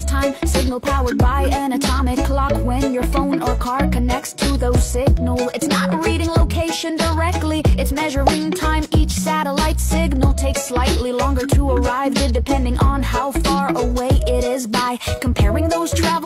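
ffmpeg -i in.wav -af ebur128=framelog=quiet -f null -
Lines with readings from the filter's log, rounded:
Integrated loudness:
  I:         -18.3 LUFS
  Threshold: -28.3 LUFS
Loudness range:
  LRA:         0.7 LU
  Threshold: -38.3 LUFS
  LRA low:   -18.6 LUFS
  LRA high:  -17.9 LUFS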